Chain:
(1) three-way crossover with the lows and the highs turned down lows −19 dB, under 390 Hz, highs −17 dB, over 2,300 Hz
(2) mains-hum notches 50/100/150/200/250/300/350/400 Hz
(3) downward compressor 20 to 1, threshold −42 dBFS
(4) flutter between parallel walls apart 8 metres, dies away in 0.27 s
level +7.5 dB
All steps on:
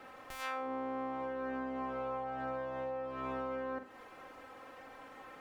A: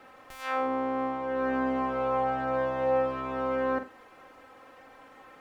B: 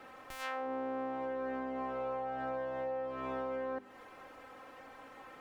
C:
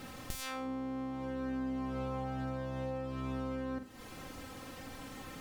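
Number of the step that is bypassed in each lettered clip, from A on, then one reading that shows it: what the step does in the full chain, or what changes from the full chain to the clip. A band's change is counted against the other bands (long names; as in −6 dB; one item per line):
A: 3, average gain reduction 6.0 dB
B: 4, echo-to-direct ratio −10.0 dB to none audible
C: 1, 125 Hz band +15.5 dB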